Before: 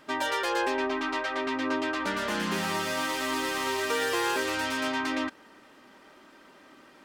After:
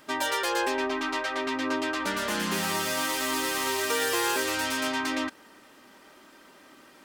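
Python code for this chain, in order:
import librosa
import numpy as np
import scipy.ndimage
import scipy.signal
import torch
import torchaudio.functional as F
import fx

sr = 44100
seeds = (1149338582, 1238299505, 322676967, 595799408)

y = fx.high_shelf(x, sr, hz=6400.0, db=11.0)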